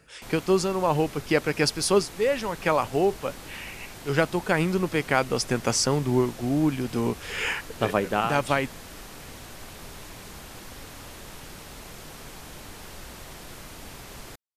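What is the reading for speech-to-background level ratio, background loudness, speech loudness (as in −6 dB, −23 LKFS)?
16.5 dB, −42.0 LKFS, −25.5 LKFS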